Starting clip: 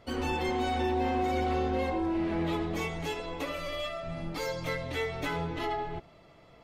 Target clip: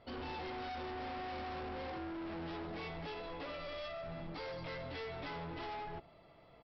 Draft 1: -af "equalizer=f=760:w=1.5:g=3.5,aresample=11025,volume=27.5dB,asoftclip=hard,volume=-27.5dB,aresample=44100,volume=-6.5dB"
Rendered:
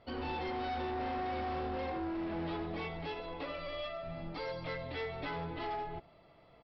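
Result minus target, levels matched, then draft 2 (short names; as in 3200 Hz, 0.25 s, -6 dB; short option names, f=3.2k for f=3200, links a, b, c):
overloaded stage: distortion -6 dB
-af "equalizer=f=760:w=1.5:g=3.5,aresample=11025,volume=35dB,asoftclip=hard,volume=-35dB,aresample=44100,volume=-6.5dB"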